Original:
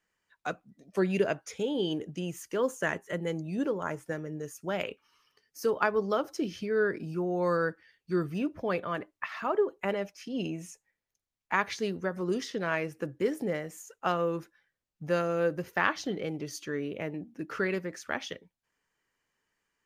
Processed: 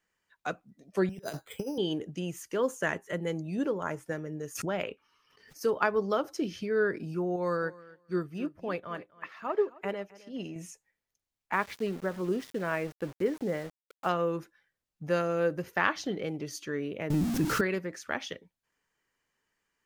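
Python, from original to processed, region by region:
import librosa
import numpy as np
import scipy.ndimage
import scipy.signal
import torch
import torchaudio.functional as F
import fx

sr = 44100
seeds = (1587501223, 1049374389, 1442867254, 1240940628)

y = fx.chain(x, sr, fx.over_compress(threshold_db=-34.0, ratio=-0.5),
    fx.resample_bad(factor=8, down='filtered', up='hold'),
    fx.band_widen(depth_pct=100), at=(1.09, 1.78))
y = fx.chain(y, sr, fx.high_shelf(hz=4300.0, db=-7.5),
    fx.pre_swell(db_per_s=59.0), at=(4.55, 5.61))
y = fx.chain(y, sr, fx.echo_feedback(ms=263, feedback_pct=22, wet_db=-14.0),
    fx.upward_expand(threshold_db=-49.0, expansion=1.5), at=(7.36, 10.56))
y = fx.chain(y, sr, fx.lowpass(hz=1900.0, slope=6),
    fx.sample_gate(floor_db=-43.5), at=(11.53, 14.09))
y = fx.chain(y, sr, fx.zero_step(step_db=-39.5),
    fx.bass_treble(bass_db=13, treble_db=8),
    fx.env_flatten(amount_pct=50), at=(17.1, 17.61))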